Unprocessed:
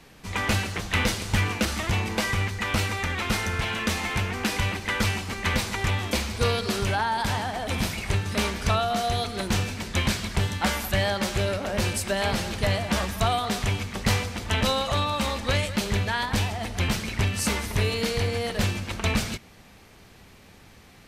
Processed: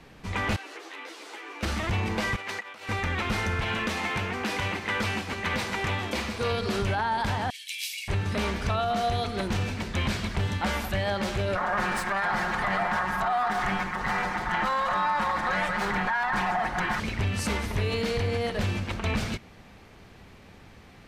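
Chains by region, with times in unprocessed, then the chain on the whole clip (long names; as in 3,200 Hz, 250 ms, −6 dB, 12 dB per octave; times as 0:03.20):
0:00.56–0:01.63: Butterworth high-pass 280 Hz 72 dB per octave + downward compressor 10 to 1, threshold −34 dBFS + string-ensemble chorus
0:02.36–0:02.89: high-pass filter 480 Hz + compressor whose output falls as the input rises −36 dBFS, ratio −0.5
0:03.87–0:06.52: high-pass filter 190 Hz 6 dB per octave + single-tap delay 725 ms −12.5 dB
0:07.50–0:08.08: Butterworth high-pass 2,300 Hz 48 dB per octave + high-shelf EQ 7,400 Hz +11.5 dB + comb filter 1.8 ms, depth 32%
0:11.55–0:17.00: lower of the sound and its delayed copy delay 5.5 ms + flat-topped bell 1,200 Hz +13.5 dB
whole clip: high-shelf EQ 5,000 Hz −12 dB; brickwall limiter −20 dBFS; level +1.5 dB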